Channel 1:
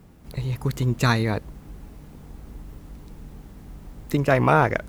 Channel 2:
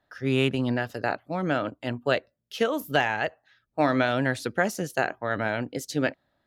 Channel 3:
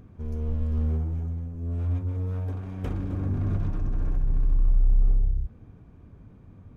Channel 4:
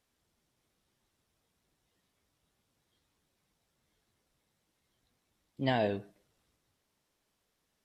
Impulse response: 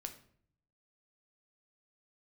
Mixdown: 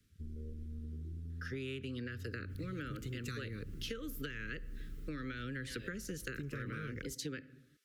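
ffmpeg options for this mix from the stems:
-filter_complex "[0:a]adelay=2250,volume=0.376[s0];[1:a]adelay=1300,volume=0.794,asplit=2[s1][s2];[s2]volume=0.376[s3];[2:a]afwtdn=0.0355,acrossover=split=340|3000[s4][s5][s6];[s4]acompressor=threshold=0.0251:ratio=6[s7];[s7][s5][s6]amix=inputs=3:normalize=0,volume=0.398[s8];[3:a]highpass=640,acompressor=threshold=0.00891:ratio=2,volume=1.26[s9];[4:a]atrim=start_sample=2205[s10];[s3][s10]afir=irnorm=-1:irlink=0[s11];[s0][s1][s8][s9][s11]amix=inputs=5:normalize=0,acrossover=split=130|350[s12][s13][s14];[s12]acompressor=threshold=0.00891:ratio=4[s15];[s13]acompressor=threshold=0.00631:ratio=4[s16];[s14]acompressor=threshold=0.0158:ratio=4[s17];[s15][s16][s17]amix=inputs=3:normalize=0,asuperstop=centerf=790:order=8:qfactor=1,acompressor=threshold=0.0126:ratio=6"

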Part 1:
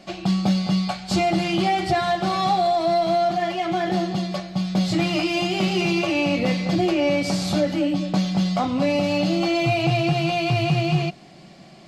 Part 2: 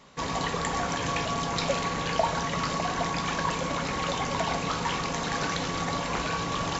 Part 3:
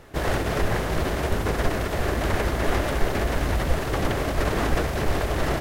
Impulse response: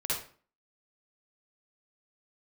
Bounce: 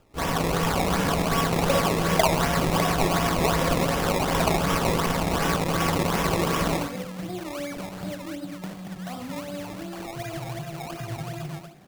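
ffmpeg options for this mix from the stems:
-filter_complex "[0:a]acompressor=threshold=0.0158:ratio=2,adelay=500,volume=0.398,asplit=2[s0][s1];[s1]volume=0.562[s2];[1:a]equalizer=f=4800:t=o:w=2.2:g=-8,acrusher=bits=4:mix=0:aa=0.5,volume=1.19,asplit=2[s3][s4];[s4]volume=0.501[s5];[2:a]volume=0.266[s6];[3:a]atrim=start_sample=2205[s7];[s2][s5]amix=inputs=2:normalize=0[s8];[s8][s7]afir=irnorm=-1:irlink=0[s9];[s0][s3][s6][s9]amix=inputs=4:normalize=0,acrusher=samples=20:mix=1:aa=0.000001:lfo=1:lforange=20:lforate=2.7"

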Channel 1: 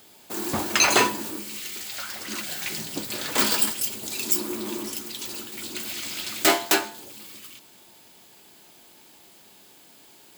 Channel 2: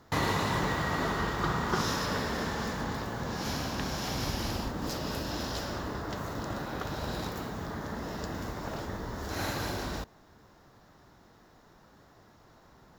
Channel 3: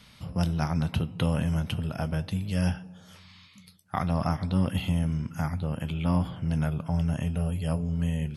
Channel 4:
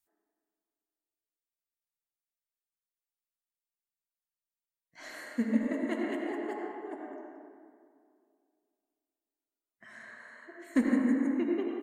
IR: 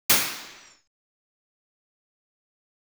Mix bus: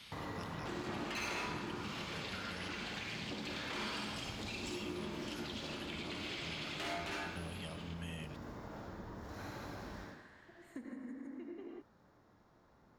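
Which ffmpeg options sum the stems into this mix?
-filter_complex "[0:a]lowpass=3500,agate=range=0.0224:threshold=0.00562:ratio=3:detection=peak,asoftclip=type=tanh:threshold=0.0708,adelay=350,volume=0.841,asplit=2[s0][s1];[s1]volume=0.0708[s2];[1:a]highshelf=f=2300:g=-8.5,volume=0.282,asplit=2[s3][s4];[s4]volume=0.106[s5];[2:a]lowshelf=f=450:g=-11.5,alimiter=level_in=1.58:limit=0.0631:level=0:latency=1:release=155,volume=0.631,volume=0.794[s6];[3:a]acompressor=threshold=0.0251:ratio=3,volume=0.282[s7];[s0][s6]amix=inputs=2:normalize=0,equalizer=f=3000:t=o:w=1.2:g=5.5,alimiter=level_in=1.68:limit=0.0631:level=0:latency=1:release=295,volume=0.596,volume=1[s8];[4:a]atrim=start_sample=2205[s9];[s2][s5]amix=inputs=2:normalize=0[s10];[s10][s9]afir=irnorm=-1:irlink=0[s11];[s3][s7][s8][s11]amix=inputs=4:normalize=0,acompressor=threshold=0.00562:ratio=2"

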